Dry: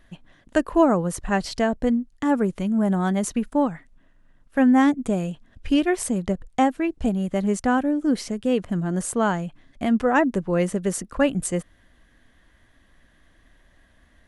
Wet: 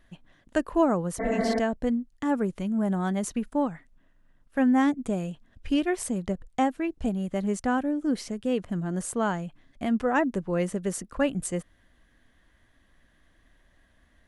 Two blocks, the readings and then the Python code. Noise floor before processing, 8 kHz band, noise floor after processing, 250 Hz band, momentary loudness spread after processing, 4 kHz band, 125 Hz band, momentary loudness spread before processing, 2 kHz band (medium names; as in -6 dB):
-59 dBFS, -5.0 dB, -64 dBFS, -5.0 dB, 8 LU, -5.0 dB, -5.0 dB, 8 LU, -5.0 dB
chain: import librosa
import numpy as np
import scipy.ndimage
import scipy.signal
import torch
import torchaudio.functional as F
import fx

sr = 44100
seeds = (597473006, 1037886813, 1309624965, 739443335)

y = fx.spec_repair(x, sr, seeds[0], start_s=1.23, length_s=0.33, low_hz=200.0, high_hz=2300.0, source='after')
y = y * 10.0 ** (-5.0 / 20.0)